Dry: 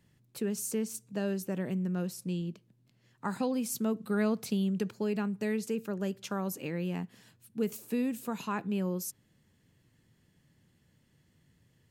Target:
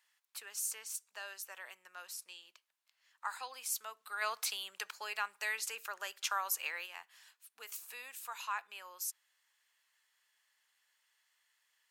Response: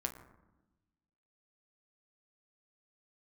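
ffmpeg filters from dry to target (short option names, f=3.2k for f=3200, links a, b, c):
-filter_complex "[0:a]highpass=f=960:w=0.5412,highpass=f=960:w=1.3066,asplit=3[a][b][c];[a]afade=t=out:st=4.21:d=0.02[d];[b]acontrast=69,afade=t=in:st=4.21:d=0.02,afade=t=out:st=6.85:d=0.02[e];[c]afade=t=in:st=6.85:d=0.02[f];[d][e][f]amix=inputs=3:normalize=0"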